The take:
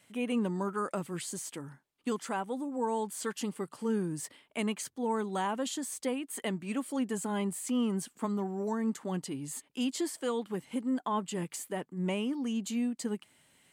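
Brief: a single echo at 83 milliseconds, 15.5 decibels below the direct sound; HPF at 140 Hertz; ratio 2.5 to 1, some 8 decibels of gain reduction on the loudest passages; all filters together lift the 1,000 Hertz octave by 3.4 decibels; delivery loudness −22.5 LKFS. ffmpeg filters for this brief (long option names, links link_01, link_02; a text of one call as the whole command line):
ffmpeg -i in.wav -af "highpass=140,equalizer=frequency=1000:width_type=o:gain=4,acompressor=threshold=-38dB:ratio=2.5,aecho=1:1:83:0.168,volume=17.5dB" out.wav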